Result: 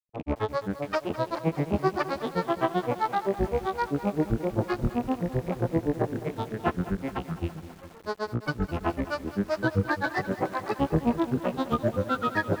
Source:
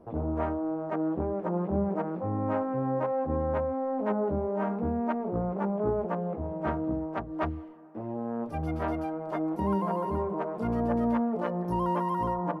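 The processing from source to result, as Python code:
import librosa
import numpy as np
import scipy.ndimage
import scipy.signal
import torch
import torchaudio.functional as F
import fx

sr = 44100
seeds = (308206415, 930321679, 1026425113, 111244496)

y = fx.rattle_buzz(x, sr, strikes_db=-41.0, level_db=-36.0)
y = fx.granulator(y, sr, seeds[0], grain_ms=100.0, per_s=7.7, spray_ms=100.0, spread_st=12)
y = fx.echo_crushed(y, sr, ms=207, feedback_pct=80, bits=8, wet_db=-14)
y = y * librosa.db_to_amplitude(6.5)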